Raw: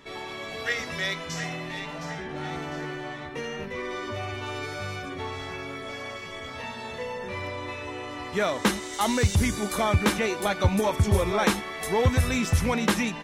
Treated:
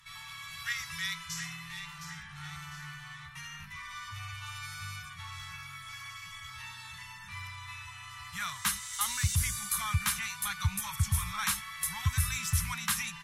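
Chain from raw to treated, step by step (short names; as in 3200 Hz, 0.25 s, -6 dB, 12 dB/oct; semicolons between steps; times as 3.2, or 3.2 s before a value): elliptic band-stop 150–1100 Hz, stop band 70 dB; bell 12000 Hz +13.5 dB 1.2 oct; gain -6 dB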